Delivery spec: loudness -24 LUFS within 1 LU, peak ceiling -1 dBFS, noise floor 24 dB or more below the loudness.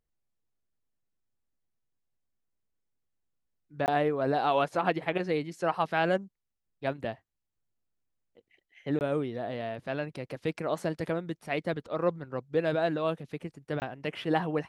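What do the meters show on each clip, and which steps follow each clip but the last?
dropouts 3; longest dropout 19 ms; loudness -31.0 LUFS; peak level -11.5 dBFS; loudness target -24.0 LUFS
-> interpolate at 3.86/8.99/13.80 s, 19 ms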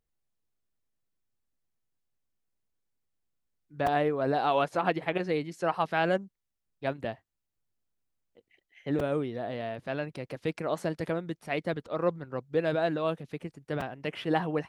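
dropouts 0; loudness -31.0 LUFS; peak level -11.5 dBFS; loudness target -24.0 LUFS
-> trim +7 dB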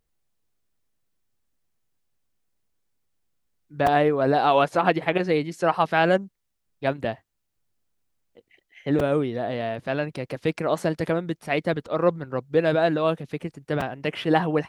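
loudness -24.0 LUFS; peak level -4.5 dBFS; noise floor -76 dBFS

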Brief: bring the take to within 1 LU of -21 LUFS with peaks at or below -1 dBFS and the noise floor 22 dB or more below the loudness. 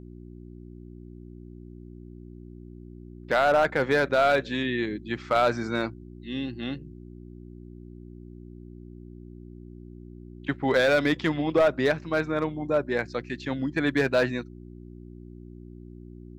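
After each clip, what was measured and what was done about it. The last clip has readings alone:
clipped samples 0.4%; clipping level -14.5 dBFS; hum 60 Hz; highest harmonic 360 Hz; hum level -42 dBFS; loudness -25.5 LUFS; peak level -14.5 dBFS; loudness target -21.0 LUFS
-> clip repair -14.5 dBFS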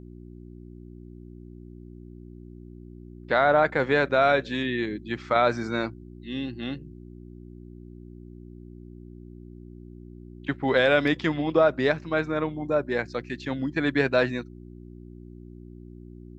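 clipped samples 0.0%; hum 60 Hz; highest harmonic 360 Hz; hum level -42 dBFS
-> de-hum 60 Hz, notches 6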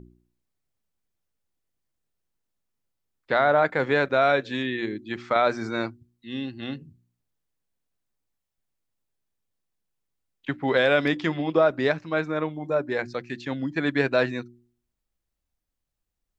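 hum not found; loudness -25.0 LUFS; peak level -6.5 dBFS; loudness target -21.0 LUFS
-> trim +4 dB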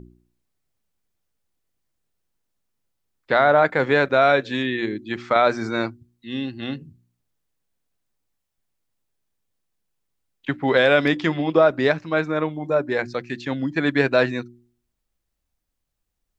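loudness -21.0 LUFS; peak level -2.5 dBFS; noise floor -79 dBFS

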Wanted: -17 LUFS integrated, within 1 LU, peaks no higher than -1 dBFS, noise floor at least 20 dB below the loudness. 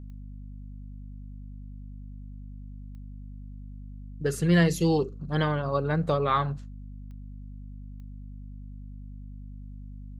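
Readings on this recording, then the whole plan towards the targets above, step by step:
clicks found 4; hum 50 Hz; highest harmonic 250 Hz; hum level -39 dBFS; loudness -26.0 LUFS; peak level -11.0 dBFS; loudness target -17.0 LUFS
-> de-click; hum notches 50/100/150/200/250 Hz; trim +9 dB

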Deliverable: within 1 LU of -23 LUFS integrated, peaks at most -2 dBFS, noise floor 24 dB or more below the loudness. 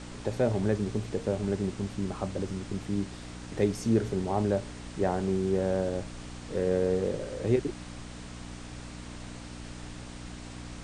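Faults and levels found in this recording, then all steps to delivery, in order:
hum 60 Hz; highest harmonic 300 Hz; hum level -41 dBFS; noise floor -43 dBFS; noise floor target -55 dBFS; loudness -30.5 LUFS; peak level -13.0 dBFS; loudness target -23.0 LUFS
-> de-hum 60 Hz, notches 5; noise print and reduce 12 dB; trim +7.5 dB

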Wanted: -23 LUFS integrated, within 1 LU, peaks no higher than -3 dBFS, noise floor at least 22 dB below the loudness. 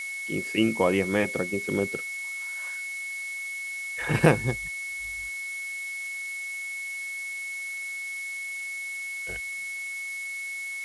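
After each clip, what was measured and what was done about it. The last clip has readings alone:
steady tone 2.2 kHz; tone level -32 dBFS; noise floor -35 dBFS; noise floor target -51 dBFS; loudness -29.0 LUFS; peak level -4.5 dBFS; loudness target -23.0 LUFS
-> band-stop 2.2 kHz, Q 30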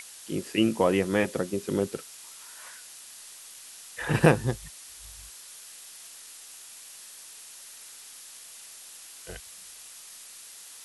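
steady tone not found; noise floor -47 dBFS; noise floor target -49 dBFS
-> noise reduction 6 dB, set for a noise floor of -47 dBFS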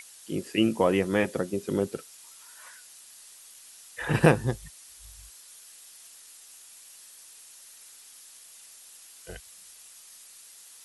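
noise floor -51 dBFS; loudness -26.5 LUFS; peak level -5.0 dBFS; loudness target -23.0 LUFS
-> trim +3.5 dB; peak limiter -3 dBFS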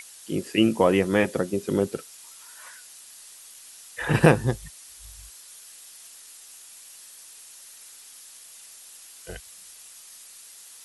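loudness -23.5 LUFS; peak level -3.0 dBFS; noise floor -47 dBFS

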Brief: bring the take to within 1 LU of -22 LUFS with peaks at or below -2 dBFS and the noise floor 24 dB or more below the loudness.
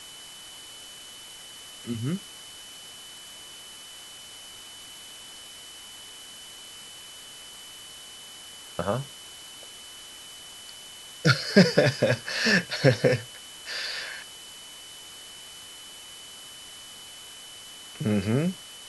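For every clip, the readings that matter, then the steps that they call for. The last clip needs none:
steady tone 3 kHz; tone level -45 dBFS; noise floor -45 dBFS; noise floor target -50 dBFS; loudness -25.5 LUFS; peak level -2.5 dBFS; loudness target -22.0 LUFS
-> band-stop 3 kHz, Q 30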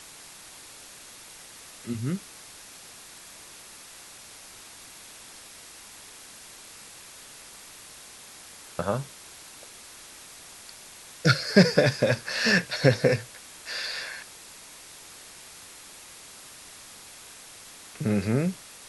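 steady tone not found; noise floor -47 dBFS; noise floor target -50 dBFS
-> noise reduction 6 dB, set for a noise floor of -47 dBFS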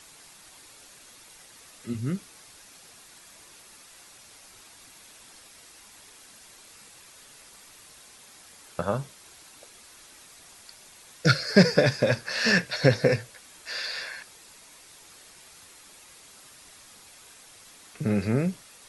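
noise floor -52 dBFS; loudness -25.5 LUFS; peak level -2.5 dBFS; loudness target -22.0 LUFS
-> trim +3.5 dB; peak limiter -2 dBFS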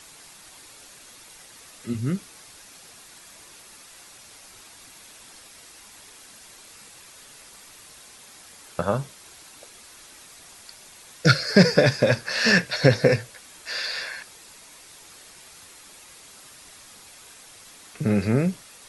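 loudness -22.0 LUFS; peak level -2.0 dBFS; noise floor -48 dBFS

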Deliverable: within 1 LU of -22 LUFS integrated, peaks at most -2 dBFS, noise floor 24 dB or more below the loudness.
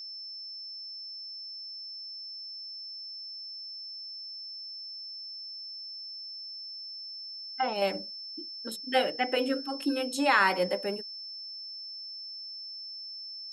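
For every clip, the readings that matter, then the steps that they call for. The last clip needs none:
steady tone 5.3 kHz; tone level -39 dBFS; loudness -33.5 LUFS; peak level -11.5 dBFS; loudness target -22.0 LUFS
-> band-stop 5.3 kHz, Q 30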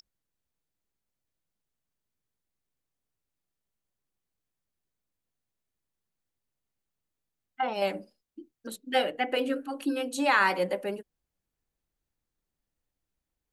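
steady tone not found; loudness -28.5 LUFS; peak level -11.5 dBFS; loudness target -22.0 LUFS
-> trim +6.5 dB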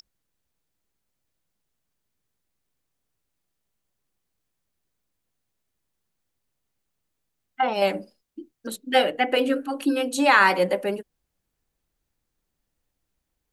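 loudness -22.0 LUFS; peak level -5.0 dBFS; noise floor -80 dBFS

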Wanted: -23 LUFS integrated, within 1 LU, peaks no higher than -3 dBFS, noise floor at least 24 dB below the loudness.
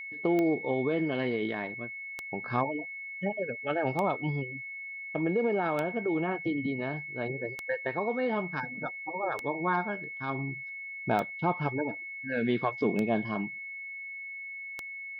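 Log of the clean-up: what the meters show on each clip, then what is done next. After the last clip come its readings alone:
clicks found 9; steady tone 2.2 kHz; tone level -38 dBFS; loudness -32.0 LUFS; peak level -13.5 dBFS; loudness target -23.0 LUFS
-> de-click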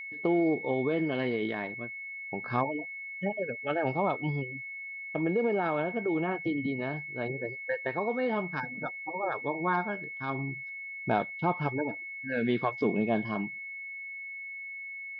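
clicks found 0; steady tone 2.2 kHz; tone level -38 dBFS
-> band-stop 2.2 kHz, Q 30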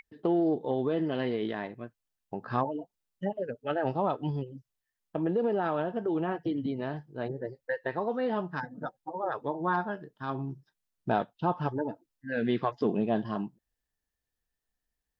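steady tone not found; loudness -32.0 LUFS; peak level -15.0 dBFS; loudness target -23.0 LUFS
-> trim +9 dB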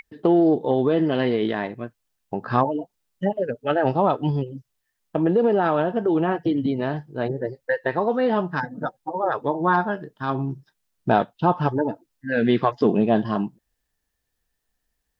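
loudness -23.0 LUFS; peak level -6.0 dBFS; noise floor -78 dBFS

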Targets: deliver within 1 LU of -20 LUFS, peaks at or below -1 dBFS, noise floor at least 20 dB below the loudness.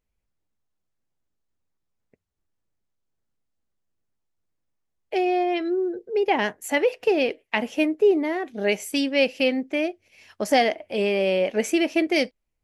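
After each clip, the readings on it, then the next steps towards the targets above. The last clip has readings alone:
loudness -23.5 LUFS; peak level -7.0 dBFS; loudness target -20.0 LUFS
-> trim +3.5 dB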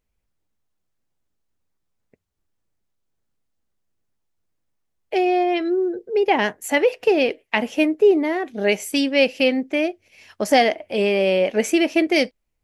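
loudness -20.0 LUFS; peak level -3.5 dBFS; noise floor -75 dBFS

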